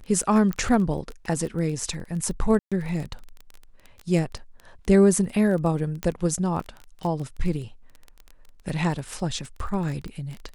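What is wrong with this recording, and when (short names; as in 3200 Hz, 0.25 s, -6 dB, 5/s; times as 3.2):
crackle 16/s -30 dBFS
0.53 pop -16 dBFS
2.59–2.72 gap 0.126 s
6.03 pop -14 dBFS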